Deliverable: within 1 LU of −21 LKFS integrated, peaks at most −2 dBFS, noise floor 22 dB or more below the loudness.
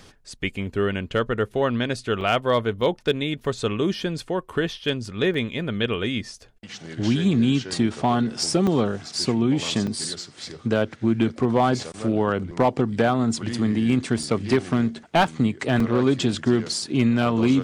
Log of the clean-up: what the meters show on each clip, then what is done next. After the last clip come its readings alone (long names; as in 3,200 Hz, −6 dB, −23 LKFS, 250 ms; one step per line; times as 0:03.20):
share of clipped samples 0.3%; peaks flattened at −11.0 dBFS; number of dropouts 8; longest dropout 3.4 ms; integrated loudness −23.5 LKFS; sample peak −11.0 dBFS; target loudness −21.0 LKFS
→ clipped peaks rebuilt −11 dBFS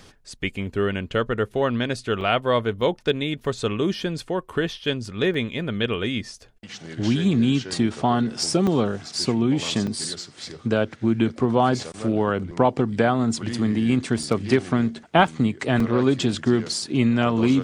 share of clipped samples 0.0%; number of dropouts 8; longest dropout 3.4 ms
→ repair the gap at 0:02.21/0:02.81/0:05.34/0:08.67/0:09.87/0:14.23/0:15.27/0:15.80, 3.4 ms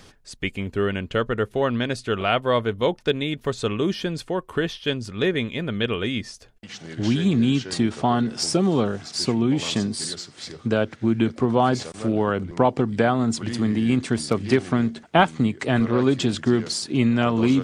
number of dropouts 0; integrated loudness −23.0 LKFS; sample peak −2.0 dBFS; target loudness −21.0 LKFS
→ level +2 dB
brickwall limiter −2 dBFS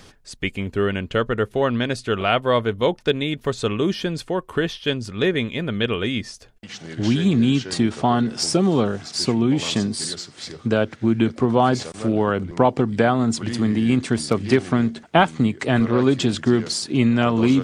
integrated loudness −21.0 LKFS; sample peak −2.0 dBFS; background noise floor −49 dBFS